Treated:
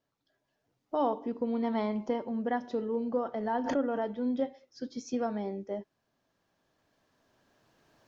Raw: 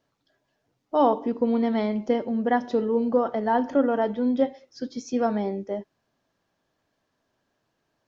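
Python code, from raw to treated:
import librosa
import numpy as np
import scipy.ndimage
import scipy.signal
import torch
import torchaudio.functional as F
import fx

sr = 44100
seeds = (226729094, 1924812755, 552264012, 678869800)

y = fx.recorder_agc(x, sr, target_db=-13.5, rise_db_per_s=6.6, max_gain_db=30)
y = fx.peak_eq(y, sr, hz=1000.0, db=9.5, octaves=0.5, at=(1.64, 2.39))
y = fx.pre_swell(y, sr, db_per_s=60.0, at=(3.4, 4.08))
y = y * librosa.db_to_amplitude(-9.0)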